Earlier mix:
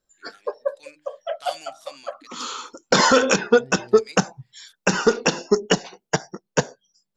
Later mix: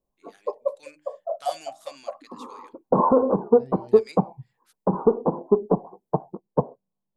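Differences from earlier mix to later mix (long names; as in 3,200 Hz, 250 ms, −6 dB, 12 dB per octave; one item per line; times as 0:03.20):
first voice: add parametric band 4,100 Hz −4.5 dB 1.8 octaves
background: add Chebyshev low-pass filter 1,100 Hz, order 6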